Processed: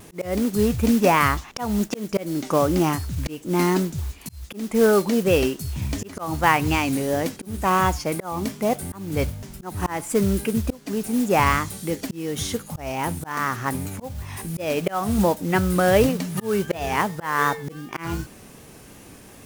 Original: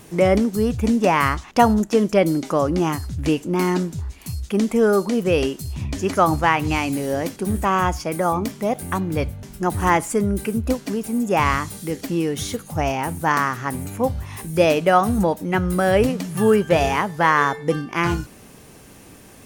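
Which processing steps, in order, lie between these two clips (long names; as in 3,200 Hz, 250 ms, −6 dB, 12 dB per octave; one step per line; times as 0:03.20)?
noise that follows the level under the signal 18 dB
pitch vibrato 2.7 Hz 59 cents
volume swells 296 ms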